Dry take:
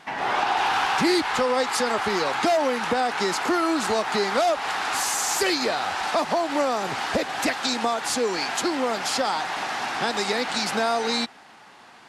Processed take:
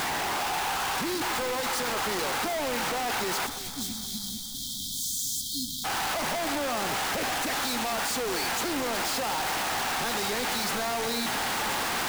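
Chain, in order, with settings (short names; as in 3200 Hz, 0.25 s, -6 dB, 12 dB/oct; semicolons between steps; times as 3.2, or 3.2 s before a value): infinite clipping; spectral delete 3.46–5.85, 290–3100 Hz; on a send: echo with dull and thin repeats by turns 0.12 s, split 1800 Hz, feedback 74%, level -11 dB; on the sum: gain -5 dB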